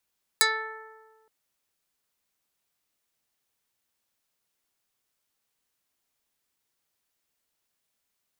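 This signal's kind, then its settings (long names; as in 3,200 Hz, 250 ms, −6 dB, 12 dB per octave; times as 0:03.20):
Karplus-Strong string A4, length 0.87 s, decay 1.60 s, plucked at 0.15, dark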